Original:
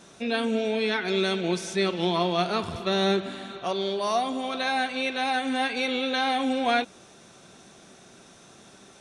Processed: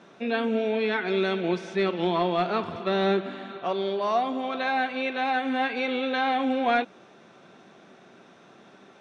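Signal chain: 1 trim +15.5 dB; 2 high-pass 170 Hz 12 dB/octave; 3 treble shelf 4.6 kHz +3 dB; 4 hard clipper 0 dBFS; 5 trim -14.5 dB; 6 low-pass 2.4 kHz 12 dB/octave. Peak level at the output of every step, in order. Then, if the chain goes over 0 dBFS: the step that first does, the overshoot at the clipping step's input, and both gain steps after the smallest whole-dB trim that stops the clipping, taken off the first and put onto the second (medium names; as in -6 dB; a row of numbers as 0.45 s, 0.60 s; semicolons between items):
+3.0 dBFS, +4.0 dBFS, +4.5 dBFS, 0.0 dBFS, -14.5 dBFS, -14.0 dBFS; step 1, 4.5 dB; step 1 +10.5 dB, step 5 -9.5 dB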